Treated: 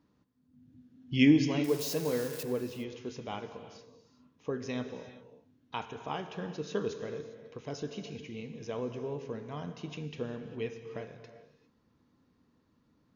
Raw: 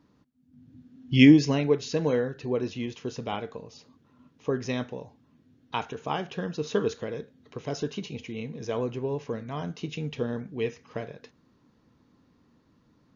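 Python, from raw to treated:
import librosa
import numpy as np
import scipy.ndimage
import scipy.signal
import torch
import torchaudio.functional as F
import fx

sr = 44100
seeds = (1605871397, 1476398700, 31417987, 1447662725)

y = fx.crossing_spikes(x, sr, level_db=-24.0, at=(1.64, 2.43))
y = fx.rev_gated(y, sr, seeds[0], gate_ms=430, shape='flat', drr_db=8.5)
y = y * librosa.db_to_amplitude(-7.0)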